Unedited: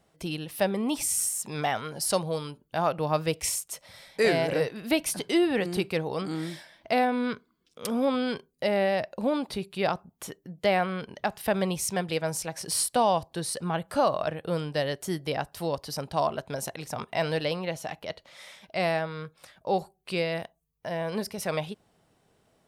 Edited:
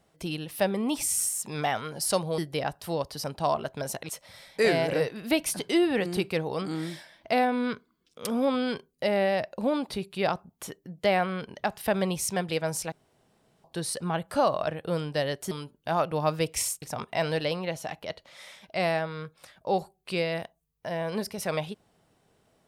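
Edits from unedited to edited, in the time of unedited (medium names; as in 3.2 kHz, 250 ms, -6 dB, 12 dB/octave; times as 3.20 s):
2.38–3.69 s: swap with 15.11–16.82 s
12.52–13.24 s: room tone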